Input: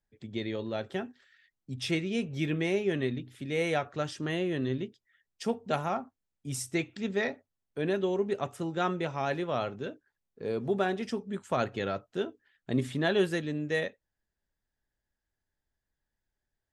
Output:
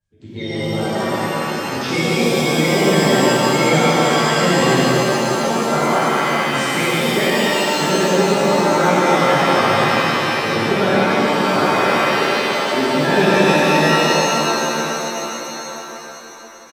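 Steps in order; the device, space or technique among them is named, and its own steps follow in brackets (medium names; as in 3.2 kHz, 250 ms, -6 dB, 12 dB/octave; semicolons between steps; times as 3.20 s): clip after many re-uploads (low-pass 7 kHz; coarse spectral quantiser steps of 30 dB); 11.59–12.88 s: high-pass 270 Hz 12 dB/octave; delay 169 ms -6 dB; pitch-shifted reverb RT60 3.8 s, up +7 st, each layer -2 dB, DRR -11 dB; trim +2 dB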